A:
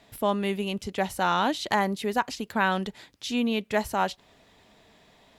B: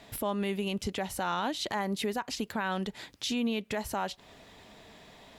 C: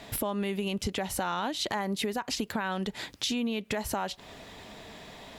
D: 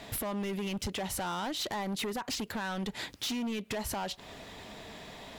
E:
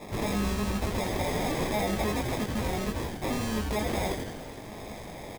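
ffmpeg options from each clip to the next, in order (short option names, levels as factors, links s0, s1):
-filter_complex "[0:a]asplit=2[s0][s1];[s1]acompressor=threshold=0.02:ratio=6,volume=0.708[s2];[s0][s2]amix=inputs=2:normalize=0,alimiter=limit=0.0794:level=0:latency=1:release=185"
-af "acompressor=threshold=0.02:ratio=6,volume=2.11"
-af "asoftclip=type=hard:threshold=0.0282"
-filter_complex "[0:a]acrusher=samples=30:mix=1:aa=0.000001,asplit=2[s0][s1];[s1]adelay=19,volume=0.631[s2];[s0][s2]amix=inputs=2:normalize=0,asplit=9[s3][s4][s5][s6][s7][s8][s9][s10][s11];[s4]adelay=83,afreqshift=-140,volume=0.668[s12];[s5]adelay=166,afreqshift=-280,volume=0.394[s13];[s6]adelay=249,afreqshift=-420,volume=0.232[s14];[s7]adelay=332,afreqshift=-560,volume=0.138[s15];[s8]adelay=415,afreqshift=-700,volume=0.0813[s16];[s9]adelay=498,afreqshift=-840,volume=0.0479[s17];[s10]adelay=581,afreqshift=-980,volume=0.0282[s18];[s11]adelay=664,afreqshift=-1120,volume=0.0166[s19];[s3][s12][s13][s14][s15][s16][s17][s18][s19]amix=inputs=9:normalize=0,volume=1.33"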